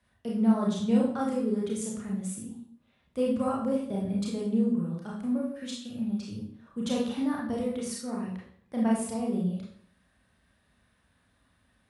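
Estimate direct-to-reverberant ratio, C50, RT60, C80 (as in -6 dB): -4.5 dB, 2.5 dB, 0.60 s, 7.5 dB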